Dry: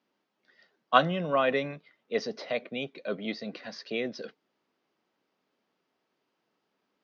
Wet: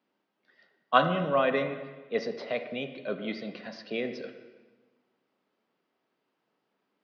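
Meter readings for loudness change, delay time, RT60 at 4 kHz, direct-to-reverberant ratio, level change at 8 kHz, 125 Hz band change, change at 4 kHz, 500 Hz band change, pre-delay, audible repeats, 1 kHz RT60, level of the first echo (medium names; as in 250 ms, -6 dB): 0.0 dB, no echo, 1.2 s, 8.0 dB, no reading, +0.5 dB, -2.0 dB, +1.0 dB, 28 ms, no echo, 1.3 s, no echo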